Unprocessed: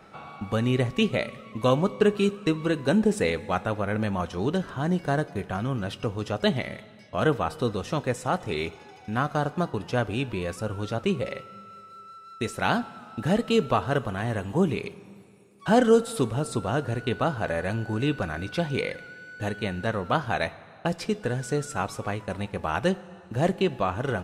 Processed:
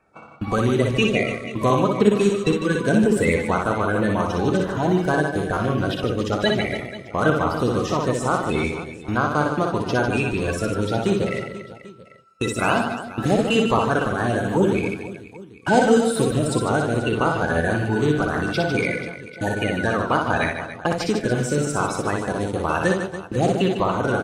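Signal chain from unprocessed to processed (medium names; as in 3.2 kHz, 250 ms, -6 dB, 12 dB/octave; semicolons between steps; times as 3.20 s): coarse spectral quantiser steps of 30 dB; gate -40 dBFS, range -20 dB; in parallel at +3 dB: compression, threshold -30 dBFS, peak gain reduction 15.5 dB; on the sum: reverse bouncing-ball echo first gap 60 ms, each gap 1.5×, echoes 5; on a send at -17 dB: reverberation RT60 0.60 s, pre-delay 3 ms; on the sum: buffer glitch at 5.53 s, samples 512, times 2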